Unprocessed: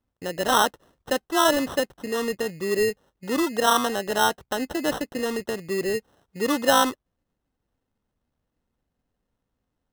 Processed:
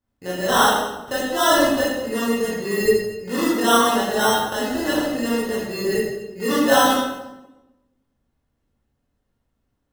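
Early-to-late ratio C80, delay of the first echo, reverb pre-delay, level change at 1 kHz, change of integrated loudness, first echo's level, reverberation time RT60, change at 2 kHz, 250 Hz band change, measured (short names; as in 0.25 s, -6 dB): 3.0 dB, none, 16 ms, +4.0 dB, +4.0 dB, none, 1.0 s, +4.5 dB, +6.0 dB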